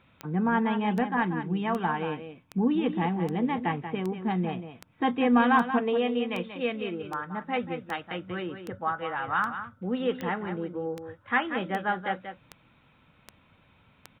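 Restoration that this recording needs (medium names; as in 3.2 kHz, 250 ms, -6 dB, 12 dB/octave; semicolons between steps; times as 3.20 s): de-click; inverse comb 184 ms -9.5 dB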